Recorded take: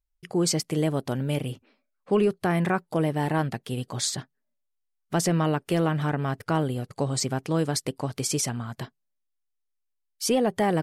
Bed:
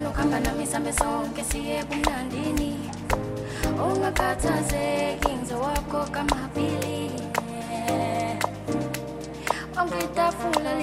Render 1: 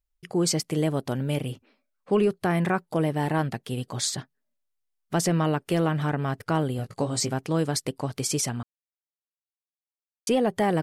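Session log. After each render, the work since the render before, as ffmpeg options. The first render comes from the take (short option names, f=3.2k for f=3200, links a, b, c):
-filter_complex "[0:a]asettb=1/sr,asplit=3[a][b][c];[a]atrim=end=6.774[d];[b]atrim=start=6.77:end=7.34,asetpts=PTS-STARTPTS,afade=t=in:d=0.004:c=qsin,afade=t=out:st=0.566:d=0.004:c=qsin,asplit=2[e][f];[f]adelay=18,volume=-7dB[g];[e][g]amix=inputs=2:normalize=0,atrim=end_sample=25137[h];[c]atrim=start=7.336[i];[d][h]acrossfade=d=0.004:c1=hsin:c2=qsin[j];[j][i]acrossfade=d=0.004:c1=qsin:c2=hsin,asplit=3[k][l][m];[k]atrim=end=8.63,asetpts=PTS-STARTPTS,afade=t=out:st=8.626:d=0.004:c=hsin[n];[l]atrim=start=8.63:end=10.27,asetpts=PTS-STARTPTS,volume=0[o];[m]atrim=start=10.27,asetpts=PTS-STARTPTS,afade=t=in:d=0.004:c=hsin[p];[n][o][p]concat=n=3:v=0:a=1"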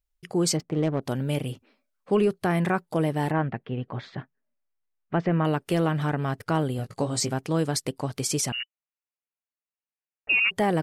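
-filter_complex "[0:a]asplit=3[a][b][c];[a]afade=t=out:st=0.56:d=0.02[d];[b]adynamicsmooth=sensitivity=2:basefreq=920,afade=t=in:st=0.56:d=0.02,afade=t=out:st=1.01:d=0.02[e];[c]afade=t=in:st=1.01:d=0.02[f];[d][e][f]amix=inputs=3:normalize=0,asettb=1/sr,asplit=3[g][h][i];[g]atrim=end=3.314[j];[h]atrim=start=3.31:end=5.45,asetpts=PTS-STARTPTS,afade=t=in:d=0.004:c=qsin,afade=t=out:st=2.136:d=0.004:c=qsin,lowpass=f=2.5k:w=0.5412,lowpass=f=2.5k:w=1.3066[k];[i]atrim=start=5.446[l];[j][k]acrossfade=d=0.004:c1=hsin:c2=qsin[m];[m][l]acrossfade=d=0.004:c1=qsin:c2=hsin,asettb=1/sr,asplit=3[n][o][p];[n]atrim=end=8.524[q];[o]atrim=start=8.52:end=10.51,asetpts=PTS-STARTPTS,afade=t=in:d=0.004:c=qsin,afade=t=out:st=1.986:d=0.004:c=qsin,lowpass=f=2.6k:t=q:w=0.5098,lowpass=f=2.6k:t=q:w=0.6013,lowpass=f=2.6k:t=q:w=0.9,lowpass=f=2.6k:t=q:w=2.563,afreqshift=-3000[r];[p]atrim=start=10.506[s];[q][r]acrossfade=d=0.004:c1=hsin:c2=qsin[t];[t][s]acrossfade=d=0.004:c1=qsin:c2=hsin"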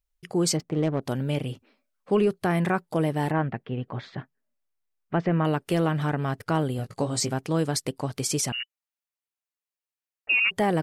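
-filter_complex "[0:a]asettb=1/sr,asplit=3[a][b][c];[a]atrim=end=1.284[d];[b]atrim=start=1.28:end=2.27,asetpts=PTS-STARTPTS,afade=t=in:d=0.004:c=qsin,afade=t=out:st=0.986:d=0.004:c=qsin,acrossover=split=7300[e][f];[f]acompressor=threshold=-58dB:ratio=4:attack=1:release=60[g];[e][g]amix=inputs=2:normalize=0[h];[c]atrim=start=2.266[i];[d][h]acrossfade=d=0.004:c1=hsin:c2=qsin[j];[j][i]acrossfade=d=0.004:c1=qsin:c2=hsin,asettb=1/sr,asplit=3[k][l][m];[k]atrim=end=8.574[n];[l]atrim=start=8.57:end=10.45,asetpts=PTS-STARTPTS,afade=t=in:d=0.004:c=qsin,afade=t=out:st=1.876:d=0.004:c=qsin,lowshelf=f=370:g=-9[o];[m]atrim=start=10.446[p];[n][o]acrossfade=d=0.004:c1=hsin:c2=qsin[q];[q][p]acrossfade=d=0.004:c1=qsin:c2=hsin"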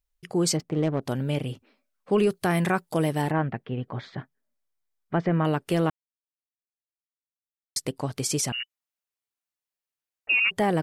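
-filter_complex "[0:a]asettb=1/sr,asplit=3[a][b][c];[a]atrim=end=2.184[d];[b]atrim=start=2.18:end=3.22,asetpts=PTS-STARTPTS,afade=t=in:d=0.004:c=qsin,afade=t=out:st=1.036:d=0.004:c=qsin,highshelf=f=3.5k:g=8.5[e];[c]atrim=start=3.216[f];[d][e]acrossfade=d=0.004:c1=hsin:c2=qsin[g];[g][f]acrossfade=d=0.004:c1=qsin:c2=hsin,asettb=1/sr,asplit=3[h][i][j];[h]atrim=end=3.804[k];[i]atrim=start=3.8:end=5.4,asetpts=PTS-STARTPTS,afade=t=in:d=0.004:c=qsin,afade=t=out:st=1.596:d=0.004:c=qsin,bandreject=f=2.7k:w=12[l];[j]atrim=start=5.396[m];[k][l]acrossfade=d=0.004:c1=hsin:c2=qsin[n];[n][m]acrossfade=d=0.004:c1=qsin:c2=hsin,asplit=3[o][p][q];[o]atrim=end=5.9,asetpts=PTS-STARTPTS,afade=t=out:st=5.896:d=0.004:c=hsin[r];[p]atrim=start=5.9:end=7.76,asetpts=PTS-STARTPTS,volume=0[s];[q]atrim=start=7.76,asetpts=PTS-STARTPTS,afade=t=in:d=0.004:c=hsin[t];[r][s][t]concat=n=3:v=0:a=1"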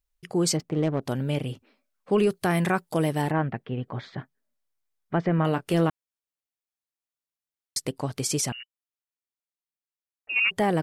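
-filter_complex "[0:a]asettb=1/sr,asplit=3[a][b][c];[a]atrim=end=5.364[d];[b]atrim=start=5.36:end=5.88,asetpts=PTS-STARTPTS,afade=t=in:d=0.004:c=qsin,afade=t=out:st=0.516:d=0.004:c=qsin,asplit=2[e][f];[f]adelay=24,volume=-11dB[g];[e][g]amix=inputs=2:normalize=0,atrim=end_sample=22932[h];[c]atrim=start=5.876[i];[d][h]acrossfade=d=0.004:c1=hsin:c2=qsin[j];[j][i]acrossfade=d=0.004:c1=qsin:c2=hsin,asplit=3[k][l][m];[k]atrim=end=8.532[n];[l]atrim=start=8.528:end=10.362,asetpts=PTS-STARTPTS,volume=-9dB[o];[m]atrim=start=10.358[p];[n][o]acrossfade=d=0.004:c1=hsin:c2=hsin[q];[q][p]acrossfade=d=0.004:c1=hsin:c2=hsin"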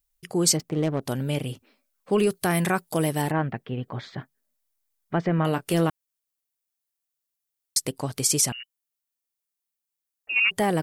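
-af "crystalizer=i=1.5:c=0"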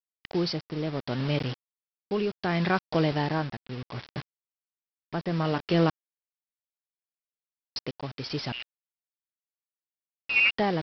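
-af "aresample=11025,acrusher=bits=5:mix=0:aa=0.000001,aresample=44100,tremolo=f=0.68:d=0.54"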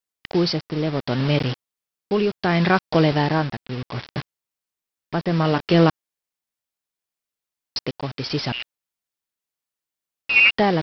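-af "volume=7.5dB"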